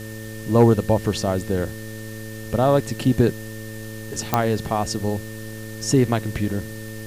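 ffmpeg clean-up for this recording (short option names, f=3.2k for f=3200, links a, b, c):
-af "adeclick=t=4,bandreject=f=109.7:t=h:w=4,bandreject=f=219.4:t=h:w=4,bandreject=f=329.1:t=h:w=4,bandreject=f=438.8:t=h:w=4,bandreject=f=548.5:t=h:w=4,bandreject=f=1.8k:w=30,afwtdn=0.0071"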